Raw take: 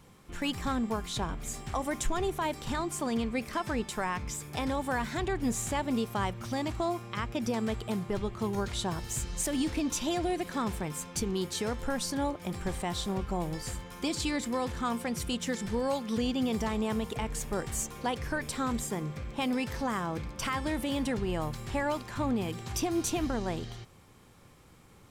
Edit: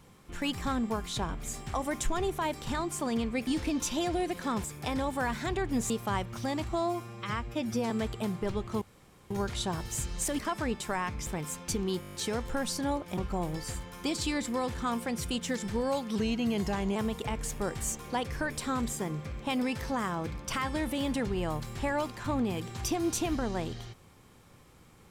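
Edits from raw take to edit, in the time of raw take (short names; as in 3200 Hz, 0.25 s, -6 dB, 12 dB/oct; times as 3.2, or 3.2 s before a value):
3.47–4.35 swap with 9.57–10.74
5.61–5.98 cut
6.77–7.58 stretch 1.5×
8.49 insert room tone 0.49 s
11.48 stutter 0.02 s, 8 plays
12.51–13.16 cut
16.14–16.87 speed 91%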